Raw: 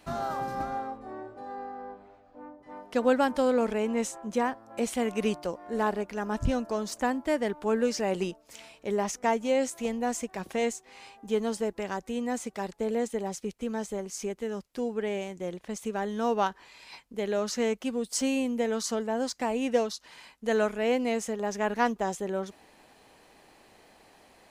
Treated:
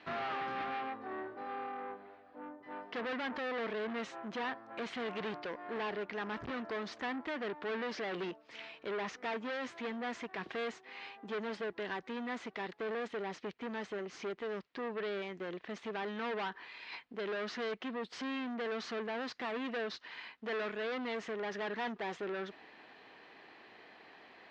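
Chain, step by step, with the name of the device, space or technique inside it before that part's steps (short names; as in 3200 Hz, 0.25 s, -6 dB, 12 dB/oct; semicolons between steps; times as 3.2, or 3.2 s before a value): guitar amplifier (tube stage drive 37 dB, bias 0.45; tone controls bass -10 dB, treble -3 dB; speaker cabinet 95–4100 Hz, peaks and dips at 560 Hz -7 dB, 840 Hz -4 dB, 1800 Hz +4 dB); gain +4.5 dB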